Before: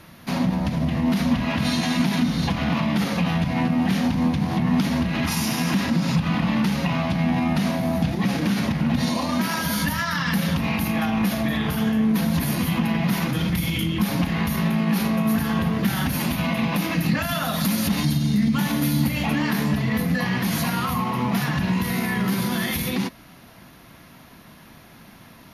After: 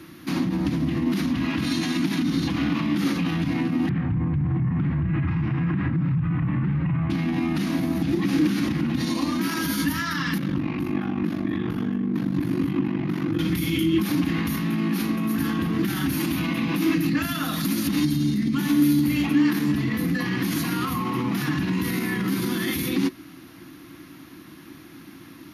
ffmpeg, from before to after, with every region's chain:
-filter_complex "[0:a]asettb=1/sr,asplit=3[a][b][c];[a]atrim=end=3.894[d];[b]atrim=start=3.89:end=7.1,asetpts=PTS-STARTPTS,afade=t=in:d=0.004:c=qsin,afade=t=out:st=3.206:d=0.004:c=qsin,lowpass=f=2.1k:w=0.5412,lowpass=f=2.1k:w=1.3066,lowshelf=f=180:t=q:w=3:g=10.5[e];[c]atrim=start=7.096[f];[d][e]acrossfade=d=0.004:c1=hsin:c2=qsin[g];[g][f]acrossfade=d=0.004:c1=qsin:c2=hsin,asettb=1/sr,asplit=3[h][i][j];[h]atrim=end=10.384[k];[i]atrim=start=10.38:end=13.39,asetpts=PTS-STARTPTS,afade=t=in:d=0.004:c=qsin,afade=t=out:st=3.006:d=0.004:c=qsin,lowpass=f=1.2k:p=1,aeval=exprs='val(0)*sin(2*PI*24*n/s)':c=same[l];[j]atrim=start=13.386[m];[k][l]acrossfade=d=0.004:c1=hsin:c2=qsin[n];[n][m]acrossfade=d=0.004:c1=qsin:c2=hsin,highpass=75,alimiter=limit=-18dB:level=0:latency=1:release=47,superequalizer=6b=3.98:7b=0.708:8b=0.355:9b=0.562"

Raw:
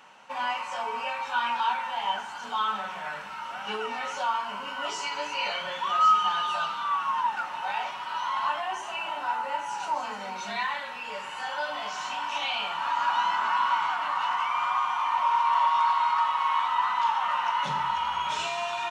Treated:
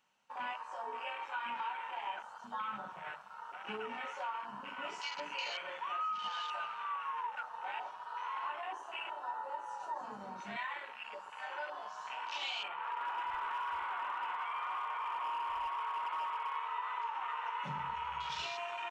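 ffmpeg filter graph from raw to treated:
-filter_complex "[0:a]asettb=1/sr,asplit=3[a][b][c];[a]atrim=end=12.684[d];[b]atrim=start=12.68:end=16.56,asetpts=PTS-STARTPTS,afade=t=in:d=0.004:c=qsin,afade=t=out:st=3.876:d=0.004:c=qsin,lowpass=2.7k,aecho=1:1:493:0.531,atrim=end_sample=171108,volume=22.5dB,asoftclip=hard,volume=-22.5dB[e];[c]atrim=start=16.556[f];[d][e]acrossfade=d=0.004:c1=hsin:c2=qsin[g];[g][f]acrossfade=d=0.004:c1=qsin:c2=hsin,equalizer=f=840:w=0.3:g=-9.5,afwtdn=0.00891,acompressor=threshold=-35dB:ratio=6"

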